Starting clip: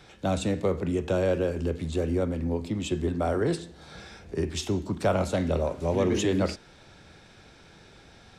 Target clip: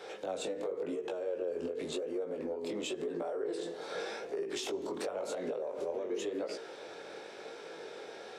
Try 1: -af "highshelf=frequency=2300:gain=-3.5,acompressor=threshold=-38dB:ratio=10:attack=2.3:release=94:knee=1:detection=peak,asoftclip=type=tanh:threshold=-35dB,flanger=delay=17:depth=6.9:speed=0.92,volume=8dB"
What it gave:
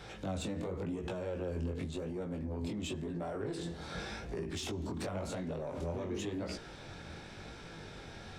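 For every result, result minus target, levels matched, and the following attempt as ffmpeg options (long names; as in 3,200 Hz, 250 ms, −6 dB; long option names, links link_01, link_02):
soft clipping: distortion +13 dB; 500 Hz band −3.5 dB
-af "highshelf=frequency=2300:gain=-3.5,acompressor=threshold=-38dB:ratio=10:attack=2.3:release=94:knee=1:detection=peak,asoftclip=type=tanh:threshold=-27dB,flanger=delay=17:depth=6.9:speed=0.92,volume=8dB"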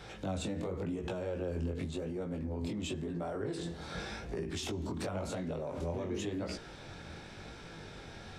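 500 Hz band −3.5 dB
-af "highpass=frequency=450:width_type=q:width=3.2,highshelf=frequency=2300:gain=-3.5,acompressor=threshold=-38dB:ratio=10:attack=2.3:release=94:knee=1:detection=peak,asoftclip=type=tanh:threshold=-27dB,flanger=delay=17:depth=6.9:speed=0.92,volume=8dB"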